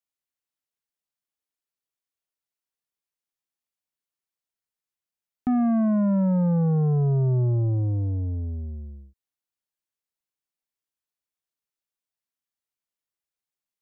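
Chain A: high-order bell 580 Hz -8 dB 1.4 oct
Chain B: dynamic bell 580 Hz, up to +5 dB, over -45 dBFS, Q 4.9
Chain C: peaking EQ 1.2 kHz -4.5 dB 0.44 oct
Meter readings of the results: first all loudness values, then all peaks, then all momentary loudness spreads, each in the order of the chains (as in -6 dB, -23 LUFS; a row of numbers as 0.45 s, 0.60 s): -23.5 LUFS, -23.0 LUFS, -23.0 LUFS; -18.0 dBFS, -18.0 dBFS, -19.0 dBFS; 12 LU, 12 LU, 12 LU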